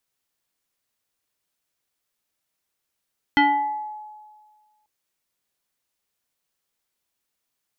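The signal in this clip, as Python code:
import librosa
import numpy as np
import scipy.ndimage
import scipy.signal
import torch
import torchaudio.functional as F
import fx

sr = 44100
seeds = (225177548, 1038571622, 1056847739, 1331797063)

y = fx.fm2(sr, length_s=1.49, level_db=-12, carrier_hz=850.0, ratio=1.34, index=1.6, index_s=0.83, decay_s=1.63, shape='exponential')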